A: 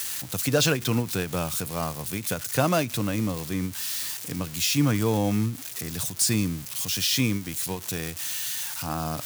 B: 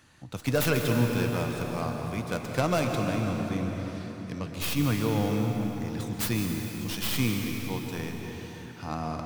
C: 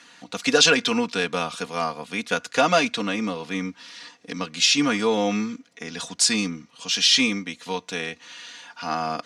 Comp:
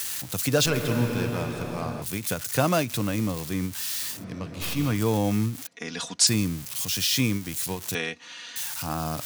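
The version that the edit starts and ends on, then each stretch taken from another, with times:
A
0.66–2.02 from B
4.17–4.94 from B, crossfade 0.16 s
5.67–6.27 from C
7.95–8.56 from C

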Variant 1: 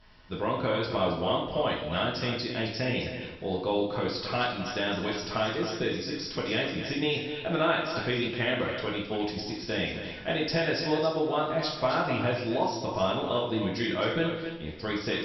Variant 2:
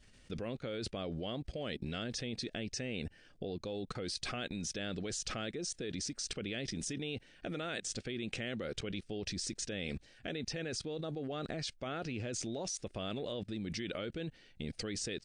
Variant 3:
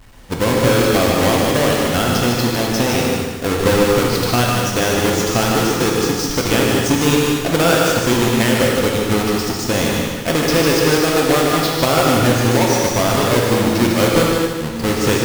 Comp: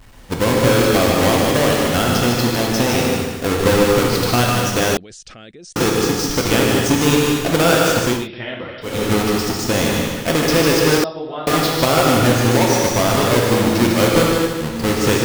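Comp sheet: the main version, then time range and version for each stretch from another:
3
4.97–5.76 from 2
8.16–8.93 from 1, crossfade 0.24 s
11.04–11.47 from 1

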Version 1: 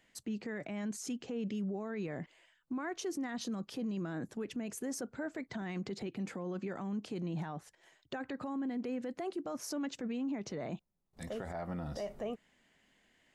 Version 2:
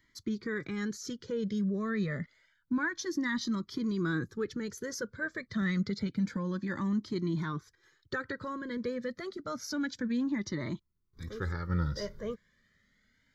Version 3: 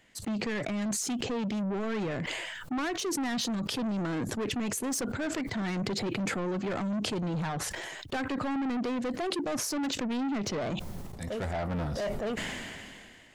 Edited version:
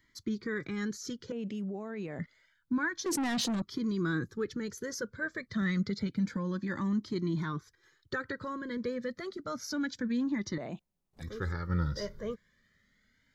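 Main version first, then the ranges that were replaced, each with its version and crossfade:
2
1.32–2.19 from 1
3.06–3.62 from 3
10.58–11.22 from 1

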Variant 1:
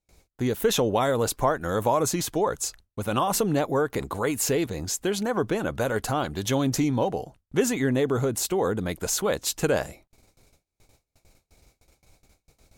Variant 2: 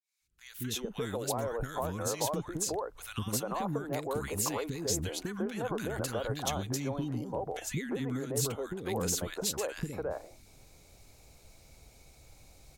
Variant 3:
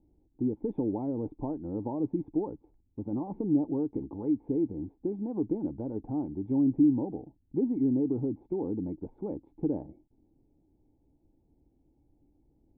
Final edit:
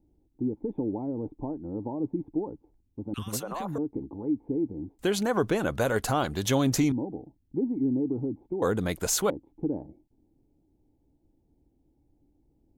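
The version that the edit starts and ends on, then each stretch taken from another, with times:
3
3.14–3.78 from 2
4.99–6.92 from 1
8.62–9.3 from 1

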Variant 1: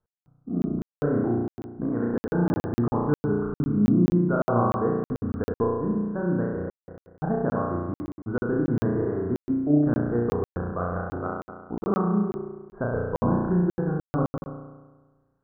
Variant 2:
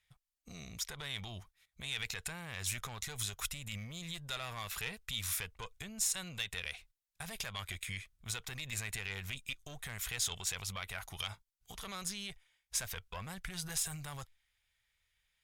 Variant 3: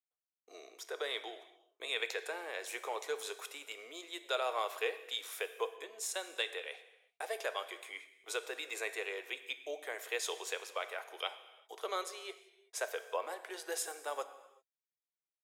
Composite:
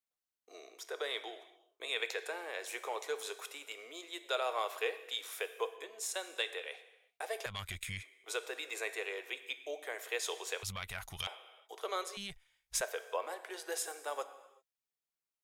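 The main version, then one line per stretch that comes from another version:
3
7.46–8.03 from 2
10.63–11.27 from 2
12.17–12.81 from 2
not used: 1

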